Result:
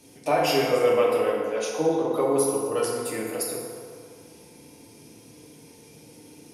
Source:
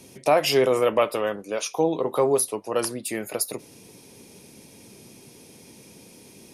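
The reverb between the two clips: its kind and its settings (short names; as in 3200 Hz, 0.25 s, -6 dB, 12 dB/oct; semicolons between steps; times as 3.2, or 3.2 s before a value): FDN reverb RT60 2.2 s, low-frequency decay 0.75×, high-frequency decay 0.5×, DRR -4.5 dB; gain -7 dB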